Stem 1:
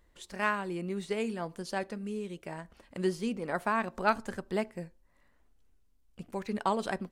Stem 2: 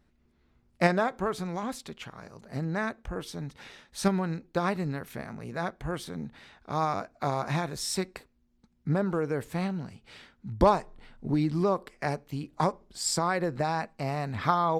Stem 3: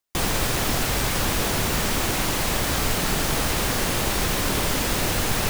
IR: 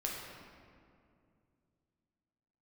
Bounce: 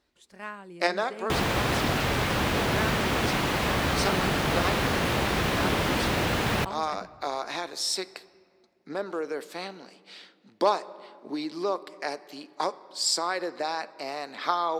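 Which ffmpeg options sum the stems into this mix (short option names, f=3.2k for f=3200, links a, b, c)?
-filter_complex "[0:a]volume=-9dB[a];[1:a]highpass=f=300:w=0.5412,highpass=f=300:w=1.3066,equalizer=f=4.4k:w=1.2:g=9.5,volume=-2.5dB,asplit=2[b][c];[c]volume=-16.5dB[d];[2:a]acrossover=split=4000[e][f];[f]acompressor=threshold=-42dB:ratio=4:attack=1:release=60[g];[e][g]amix=inputs=2:normalize=0,bandreject=f=50:t=h:w=6,bandreject=f=100:t=h:w=6,adelay=1150,volume=-0.5dB,asplit=2[h][i];[i]volume=-22dB[j];[3:a]atrim=start_sample=2205[k];[d][j]amix=inputs=2:normalize=0[l];[l][k]afir=irnorm=-1:irlink=0[m];[a][b][h][m]amix=inputs=4:normalize=0,highpass=60"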